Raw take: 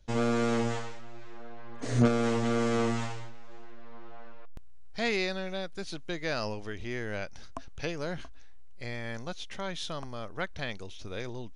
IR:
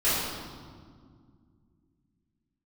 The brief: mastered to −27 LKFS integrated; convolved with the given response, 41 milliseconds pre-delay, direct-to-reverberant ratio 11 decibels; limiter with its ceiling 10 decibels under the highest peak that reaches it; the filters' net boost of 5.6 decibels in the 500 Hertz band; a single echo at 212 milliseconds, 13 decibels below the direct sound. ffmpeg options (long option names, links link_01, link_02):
-filter_complex "[0:a]equalizer=frequency=500:width_type=o:gain=6.5,alimiter=limit=-18.5dB:level=0:latency=1,aecho=1:1:212:0.224,asplit=2[link_01][link_02];[1:a]atrim=start_sample=2205,adelay=41[link_03];[link_02][link_03]afir=irnorm=-1:irlink=0,volume=-25dB[link_04];[link_01][link_04]amix=inputs=2:normalize=0,volume=4.5dB"